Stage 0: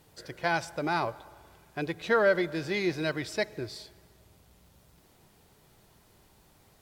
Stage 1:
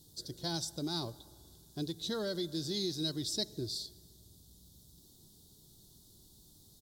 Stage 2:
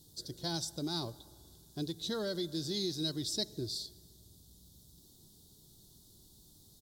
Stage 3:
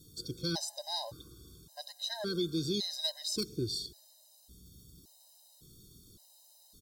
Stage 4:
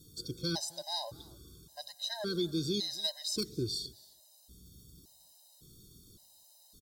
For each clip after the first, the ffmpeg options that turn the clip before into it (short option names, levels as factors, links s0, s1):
-filter_complex "[0:a]firequalizer=gain_entry='entry(320,0);entry(510,-12);entry(2400,-27);entry(3600,5)':delay=0.05:min_phase=1,acrossover=split=980[s0][s1];[s0]alimiter=level_in=1.88:limit=0.0631:level=0:latency=1:release=240,volume=0.531[s2];[s2][s1]amix=inputs=2:normalize=0"
-af anull
-af "aeval=exprs='0.0501*(abs(mod(val(0)/0.0501+3,4)-2)-1)':c=same,afftfilt=real='re*gt(sin(2*PI*0.89*pts/sr)*(1-2*mod(floor(b*sr/1024/530),2)),0)':imag='im*gt(sin(2*PI*0.89*pts/sr)*(1-2*mod(floor(b*sr/1024/530),2)),0)':win_size=1024:overlap=0.75,volume=1.68"
-af "aecho=1:1:269:0.0631"